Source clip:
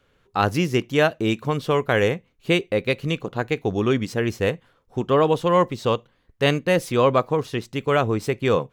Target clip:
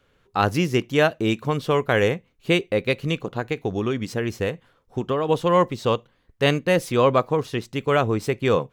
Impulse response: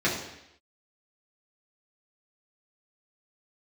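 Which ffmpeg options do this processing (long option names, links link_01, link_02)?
-filter_complex "[0:a]asettb=1/sr,asplit=3[link_01][link_02][link_03];[link_01]atrim=end=3.284[link_04];[link_02]atrim=start=3.28:end=5.29,asetpts=PTS-STARTPTS,afade=type=in:duration=0.004:curve=qsin,afade=type=out:start_time=2.006:duration=0.004:curve=qsin,acompressor=threshold=-20dB:ratio=6[link_05];[link_03]atrim=start=5.286[link_06];[link_04][link_05]acrossfade=duration=0.004:curve1=hsin:curve2=qsin[link_07];[link_07][link_06]acrossfade=duration=0.004:curve1=qsin:curve2=hsin"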